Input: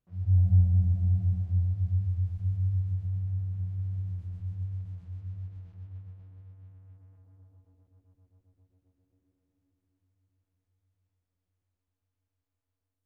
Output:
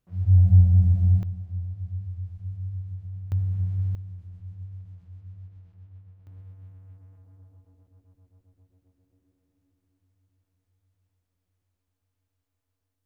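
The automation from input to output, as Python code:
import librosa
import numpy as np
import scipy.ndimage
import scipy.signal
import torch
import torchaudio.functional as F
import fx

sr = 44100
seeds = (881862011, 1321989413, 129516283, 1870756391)

y = fx.gain(x, sr, db=fx.steps((0.0, 6.0), (1.23, -5.0), (3.32, 6.5), (3.95, -4.5), (6.27, 4.5)))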